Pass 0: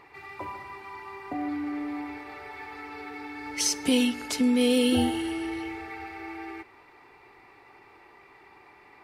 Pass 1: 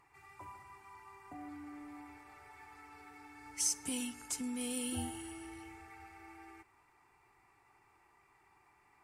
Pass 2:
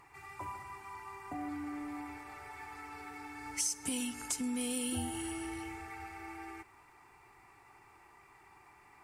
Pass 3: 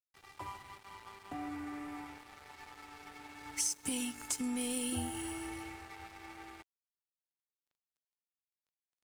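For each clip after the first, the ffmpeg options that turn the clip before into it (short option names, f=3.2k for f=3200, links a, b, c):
-af "equalizer=f=250:t=o:w=1:g=-6,equalizer=f=500:t=o:w=1:g=-12,equalizer=f=2k:t=o:w=1:g=-5,equalizer=f=4k:t=o:w=1:g=-11,equalizer=f=8k:t=o:w=1:g=10,volume=-8.5dB"
-af "acompressor=threshold=-42dB:ratio=3,volume=8dB"
-af "aeval=exprs='sgn(val(0))*max(abs(val(0))-0.00316,0)':c=same,volume=1dB"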